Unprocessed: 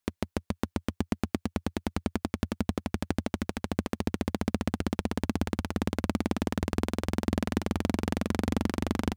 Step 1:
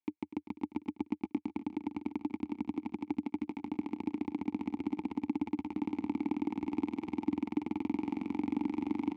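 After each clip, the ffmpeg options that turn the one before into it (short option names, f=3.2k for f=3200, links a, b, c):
-filter_complex "[0:a]asplit=3[a][b][c];[a]bandpass=f=300:t=q:w=8,volume=0dB[d];[b]bandpass=f=870:t=q:w=8,volume=-6dB[e];[c]bandpass=f=2.24k:t=q:w=8,volume=-9dB[f];[d][e][f]amix=inputs=3:normalize=0,asplit=2[g][h];[h]aecho=0:1:246|492|738|984|1230|1476|1722:0.224|0.134|0.0806|0.0484|0.029|0.0174|0.0104[i];[g][i]amix=inputs=2:normalize=0,volume=4.5dB"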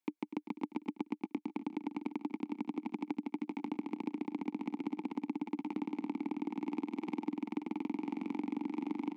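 -af "acompressor=threshold=-36dB:ratio=6,highpass=f=170:w=0.5412,highpass=f=170:w=1.3066,volume=3.5dB"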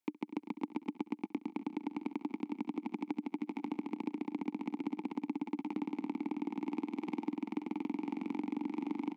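-af "aecho=1:1:67|134|201:0.0794|0.0326|0.0134"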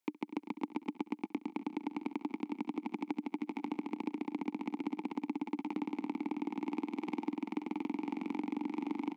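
-af "lowshelf=f=220:g=-6.5,volume=2.5dB"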